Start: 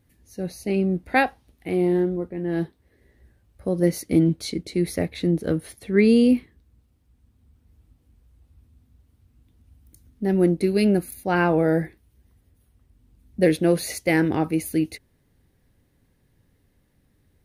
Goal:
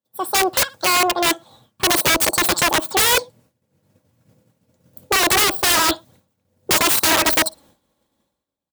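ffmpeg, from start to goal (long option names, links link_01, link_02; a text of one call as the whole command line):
ffmpeg -i in.wav -filter_complex "[0:a]dynaudnorm=framelen=110:gausssize=17:maxgain=6dB,lowshelf=frequency=230:gain=-9,asplit=2[link_01][link_02];[link_02]alimiter=limit=-13.5dB:level=0:latency=1:release=28,volume=0dB[link_03];[link_01][link_03]amix=inputs=2:normalize=0,bass=frequency=250:gain=-1,treble=frequency=4000:gain=5,aecho=1:1:7.2:0.35,aecho=1:1:114|228:0.0668|0.0154,asetrate=88200,aresample=44100,agate=range=-33dB:threshold=-46dB:ratio=3:detection=peak,aeval=exprs='(mod(4.47*val(0)+1,2)-1)/4.47':channel_layout=same,highpass=49,volume=3dB" out.wav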